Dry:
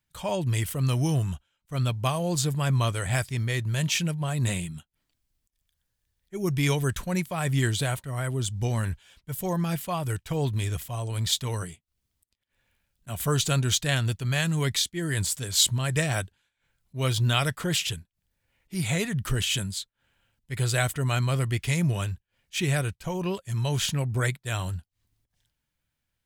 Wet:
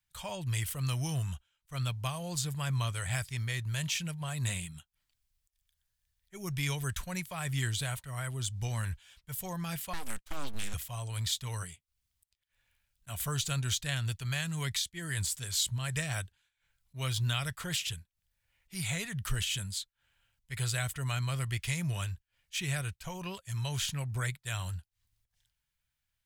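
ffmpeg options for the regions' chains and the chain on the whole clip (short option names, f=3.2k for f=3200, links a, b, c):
-filter_complex "[0:a]asettb=1/sr,asplit=3[a][b][c];[a]atrim=end=9.934[d];[b]atrim=start=9.93:end=10.74,asetpts=PTS-STARTPTS,afade=t=in:d=0.004:c=qsin,afade=t=out:st=0.806:d=0.004:c=qsin,agate=range=-33dB:threshold=-36dB:ratio=3:release=100:detection=peak,aeval=exprs='abs(val(0))':c=same[e];[c]atrim=start=10.736[f];[d][e]acrossfade=d=0.004:c1=hsin:c2=qsin[g];[g][f]acrossfade=d=0.004:c1=qsin:c2=hsin,acrossover=split=370[h][i];[i]acompressor=threshold=-32dB:ratio=2[j];[h][j]amix=inputs=2:normalize=0,equalizer=f=310:w=0.58:g=-14,volume=-1.5dB"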